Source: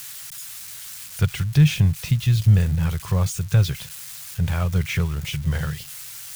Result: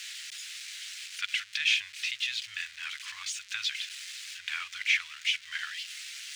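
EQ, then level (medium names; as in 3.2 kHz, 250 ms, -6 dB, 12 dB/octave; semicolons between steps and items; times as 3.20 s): inverse Chebyshev high-pass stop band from 570 Hz, stop band 60 dB; distance through air 130 m; peaking EQ 5.4 kHz -2 dB; +7.5 dB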